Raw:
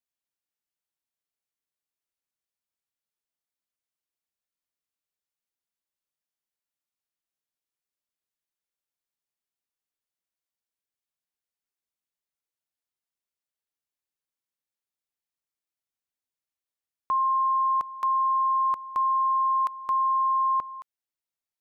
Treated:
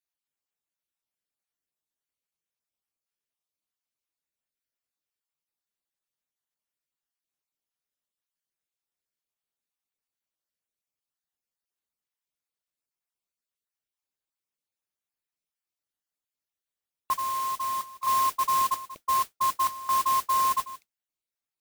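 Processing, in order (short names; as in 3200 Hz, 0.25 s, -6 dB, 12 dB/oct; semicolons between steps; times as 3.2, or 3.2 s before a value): random spectral dropouts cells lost 28%; 17.17–18.07 HPF 1400 Hz 12 dB/oct; modulation noise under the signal 10 dB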